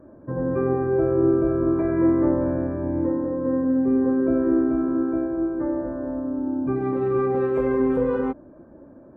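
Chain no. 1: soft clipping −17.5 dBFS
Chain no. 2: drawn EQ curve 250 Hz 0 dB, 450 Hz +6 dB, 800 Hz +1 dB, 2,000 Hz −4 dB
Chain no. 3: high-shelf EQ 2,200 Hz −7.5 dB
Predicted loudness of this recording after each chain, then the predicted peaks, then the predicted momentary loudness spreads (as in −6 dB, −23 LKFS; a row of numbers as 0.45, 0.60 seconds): −25.0, −20.0, −23.0 LKFS; −17.5, −7.0, −10.0 dBFS; 5, 9, 7 LU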